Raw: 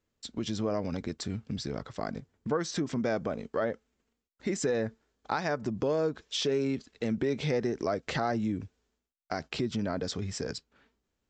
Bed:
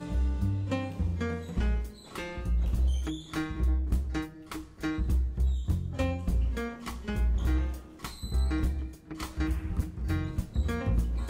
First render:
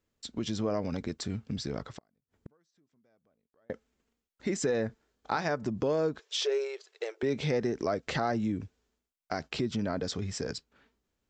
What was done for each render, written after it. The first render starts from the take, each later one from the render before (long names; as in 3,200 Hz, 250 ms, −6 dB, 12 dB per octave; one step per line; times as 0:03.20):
0:01.94–0:03.70: gate with flip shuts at −31 dBFS, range −40 dB
0:04.87–0:05.49: double-tracking delay 24 ms −11.5 dB
0:06.19–0:07.23: linear-phase brick-wall high-pass 350 Hz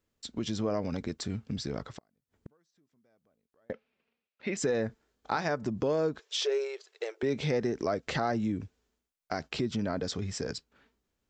0:03.72–0:04.57: loudspeaker in its box 170–4,400 Hz, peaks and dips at 300 Hz −10 dB, 560 Hz +3 dB, 2,500 Hz +10 dB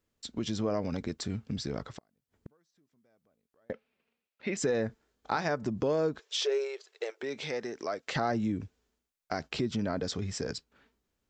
0:07.10–0:08.16: high-pass filter 760 Hz 6 dB per octave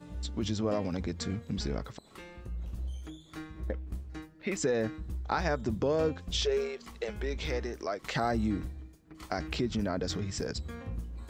mix in bed −10.5 dB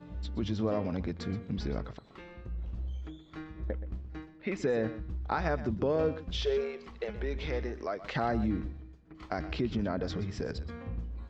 high-frequency loss of the air 190 metres
single-tap delay 124 ms −14.5 dB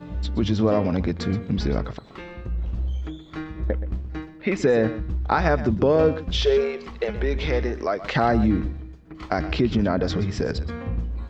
level +10.5 dB